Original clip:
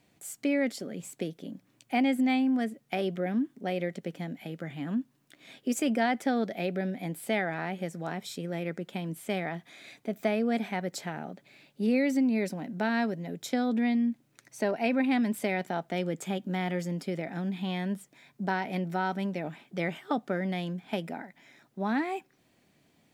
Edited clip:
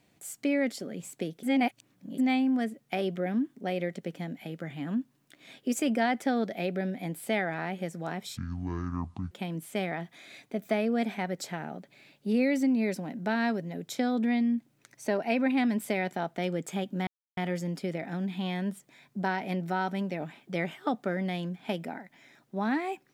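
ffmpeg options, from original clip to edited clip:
-filter_complex "[0:a]asplit=6[a][b][c][d][e][f];[a]atrim=end=1.432[g];[b]atrim=start=1.428:end=2.182,asetpts=PTS-STARTPTS,areverse[h];[c]atrim=start=2.178:end=8.374[i];[d]atrim=start=8.37:end=8.85,asetpts=PTS-STARTPTS,asetrate=22491,aresample=44100[j];[e]atrim=start=8.846:end=16.61,asetpts=PTS-STARTPTS,afade=t=out:st=7.76:d=0.004:c=hsin,apad=pad_dur=0.3[k];[f]atrim=start=16.61,asetpts=PTS-STARTPTS,afade=t=in:d=0.004:c=hsin[l];[g][h]acrossfade=d=0.004:c1=hsin:c2=hsin[m];[m][i]acrossfade=d=0.004:c1=hsin:c2=hsin[n];[n][j]acrossfade=d=0.004:c1=hsin:c2=hsin[o];[k][l]concat=n=2:v=0:a=1[p];[o][p]acrossfade=d=0.004:c1=hsin:c2=hsin"

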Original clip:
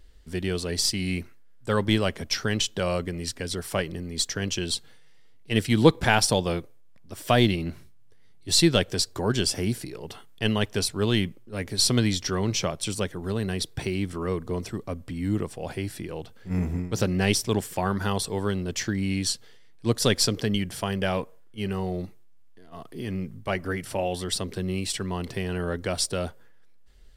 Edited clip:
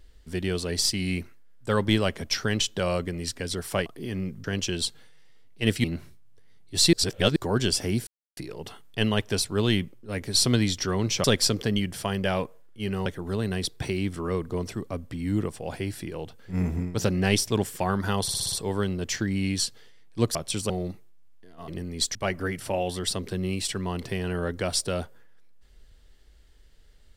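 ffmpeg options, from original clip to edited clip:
-filter_complex "[0:a]asplit=18[a][b][c][d][e][f][g][h][i][j][k][l][m][n][o][p][q][r];[a]atrim=end=3.862[s];[b]atrim=start=22.818:end=23.402[t];[c]atrim=start=4.328:end=5.732[u];[d]atrim=start=7.578:end=8.672[v];[e]atrim=start=8.668:end=9.102,asetpts=PTS-STARTPTS,areverse[w];[f]atrim=start=9.098:end=9.81,asetpts=PTS-STARTPTS,afade=t=out:st=0.708:d=0.004:c=hsin,apad=pad_dur=0.3[x];[g]atrim=start=9.81:end=12.682,asetpts=PTS-STARTPTS,afade=t=in:d=0.004:c=hsin[y];[h]atrim=start=20.018:end=21.842[z];[i]atrim=start=13.028:end=18.252[aa];[j]atrim=start=18.188:end=18.252[ab];[k]atrim=start=18.188:end=18.252[ac];[l]atrim=start=18.188:end=18.252[ad];[m]atrim=start=18.188:end=18.252[ae];[n]atrim=start=18.188:end=20.022[af];[o]atrim=start=12.678:end=13.032[ag];[p]atrim=start=21.838:end=22.822[ah];[q]atrim=start=3.858:end=4.332[ai];[r]atrim=start=23.398[aj];[s][t]acrossfade=d=0.004:c1=hsin:c2=hsin[ak];[ak][u]acrossfade=d=0.004:c1=hsin:c2=hsin[al];[al][v]acrossfade=d=0.004:c1=hsin:c2=hsin[am];[am][w]acrossfade=d=0.004:c1=hsin:c2=hsin[an];[x][y]concat=n=2:v=0:a=1[ao];[an][ao]acrossfade=d=0.004:c1=hsin:c2=hsin[ap];[ap][z]acrossfade=d=0.004:c1=hsin:c2=hsin[aq];[aq][aa]acrossfade=d=0.004:c1=hsin:c2=hsin[ar];[ar][ab]acrossfade=d=0.004:c1=hsin:c2=hsin[as];[as][ac]acrossfade=d=0.004:c1=hsin:c2=hsin[at];[at][ad]acrossfade=d=0.004:c1=hsin:c2=hsin[au];[au][ae]acrossfade=d=0.004:c1=hsin:c2=hsin[av];[av][af]acrossfade=d=0.004:c1=hsin:c2=hsin[aw];[aw][ag]acrossfade=d=0.004:c1=hsin:c2=hsin[ax];[ax][ah]acrossfade=d=0.004:c1=hsin:c2=hsin[ay];[ay][ai]acrossfade=d=0.004:c1=hsin:c2=hsin[az];[az][aj]acrossfade=d=0.004:c1=hsin:c2=hsin"

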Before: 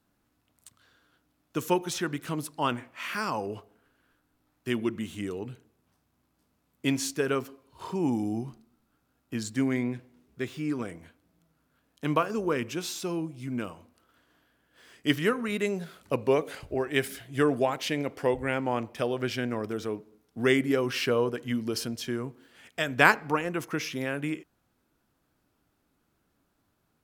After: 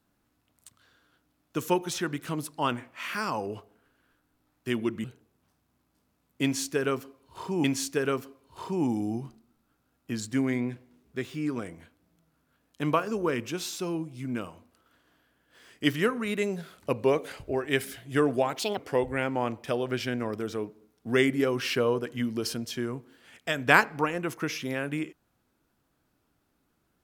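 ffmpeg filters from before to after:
-filter_complex "[0:a]asplit=5[a][b][c][d][e];[a]atrim=end=5.042[f];[b]atrim=start=5.478:end=8.082[g];[c]atrim=start=6.868:end=17.824[h];[d]atrim=start=17.82:end=18.08,asetpts=PTS-STARTPTS,asetrate=63063,aresample=44100,atrim=end_sample=8018,asetpts=PTS-STARTPTS[i];[e]atrim=start=18.076[j];[f][g]acrossfade=d=0.004:c1=hsin:c2=hsin[k];[k][h]acrossfade=d=0.004:c1=hsin:c2=hsin[l];[l][i]acrossfade=d=0.004:c1=hsin:c2=hsin[m];[m][j]acrossfade=d=0.004:c1=hsin:c2=hsin"

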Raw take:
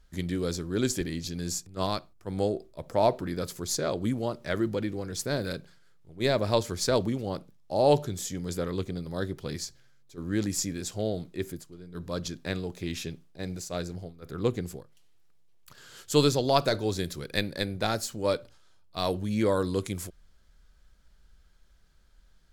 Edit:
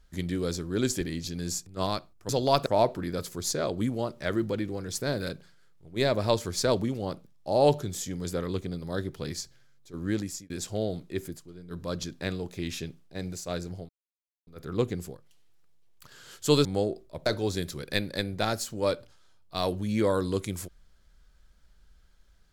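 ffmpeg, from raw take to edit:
-filter_complex "[0:a]asplit=7[a][b][c][d][e][f][g];[a]atrim=end=2.292[h];[b]atrim=start=16.308:end=16.682[i];[c]atrim=start=2.898:end=10.74,asetpts=PTS-STARTPTS,afade=t=out:st=7.442:d=0.4[j];[d]atrim=start=10.74:end=14.13,asetpts=PTS-STARTPTS,afade=t=in:d=0.004:c=hsin,afade=t=out:st=3.386:d=0.004:c=hsin,apad=pad_dur=0.58[k];[e]atrim=start=14.13:end=16.312,asetpts=PTS-STARTPTS,afade=t=in:d=0.004:c=hsin[l];[f]atrim=start=2.288:end=2.902[m];[g]atrim=start=16.678[n];[h][i]acrossfade=d=0.004:c1=hsin:c2=hsin[o];[j][k][l]concat=n=3:v=0:a=1[p];[o][p]acrossfade=d=0.004:c1=hsin:c2=hsin[q];[q][m]acrossfade=d=0.004:c1=hsin:c2=hsin[r];[r][n]acrossfade=d=0.004:c1=hsin:c2=hsin"

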